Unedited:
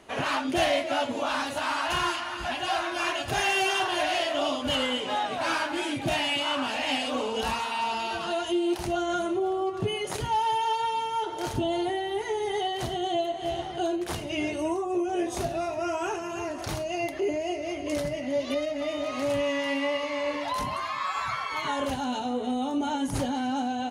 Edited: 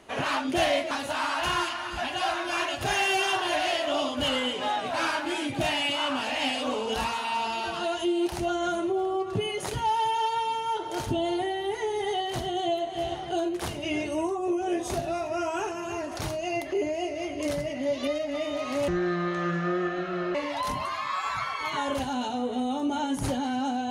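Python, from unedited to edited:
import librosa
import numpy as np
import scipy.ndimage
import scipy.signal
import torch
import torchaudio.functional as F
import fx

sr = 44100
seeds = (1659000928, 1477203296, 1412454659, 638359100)

y = fx.edit(x, sr, fx.cut(start_s=0.91, length_s=0.47),
    fx.speed_span(start_s=19.35, length_s=0.91, speed=0.62), tone=tone)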